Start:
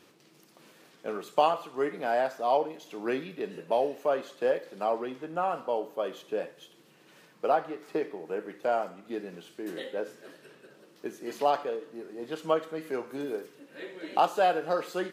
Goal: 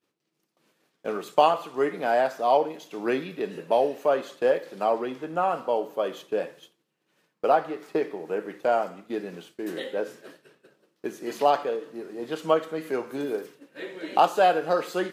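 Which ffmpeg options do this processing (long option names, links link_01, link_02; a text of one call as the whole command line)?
ffmpeg -i in.wav -af "agate=range=-33dB:threshold=-45dB:ratio=3:detection=peak,volume=4.5dB" out.wav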